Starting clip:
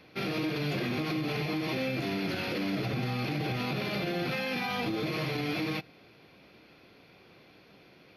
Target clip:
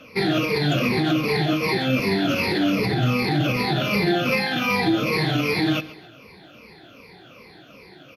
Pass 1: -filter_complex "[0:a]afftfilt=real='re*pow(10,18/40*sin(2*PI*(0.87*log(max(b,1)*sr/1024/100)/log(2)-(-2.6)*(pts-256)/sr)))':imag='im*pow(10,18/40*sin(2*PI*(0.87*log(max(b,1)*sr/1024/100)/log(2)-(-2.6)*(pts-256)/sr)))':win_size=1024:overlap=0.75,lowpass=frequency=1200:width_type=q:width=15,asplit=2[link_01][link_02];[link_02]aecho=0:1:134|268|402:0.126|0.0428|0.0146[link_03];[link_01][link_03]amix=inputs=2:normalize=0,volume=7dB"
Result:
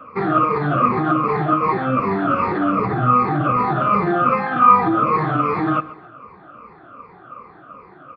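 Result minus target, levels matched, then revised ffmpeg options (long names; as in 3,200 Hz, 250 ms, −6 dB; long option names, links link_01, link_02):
1,000 Hz band +9.0 dB
-filter_complex "[0:a]afftfilt=real='re*pow(10,18/40*sin(2*PI*(0.87*log(max(b,1)*sr/1024/100)/log(2)-(-2.6)*(pts-256)/sr)))':imag='im*pow(10,18/40*sin(2*PI*(0.87*log(max(b,1)*sr/1024/100)/log(2)-(-2.6)*(pts-256)/sr)))':win_size=1024:overlap=0.75,asplit=2[link_01][link_02];[link_02]aecho=0:1:134|268|402:0.126|0.0428|0.0146[link_03];[link_01][link_03]amix=inputs=2:normalize=0,volume=7dB"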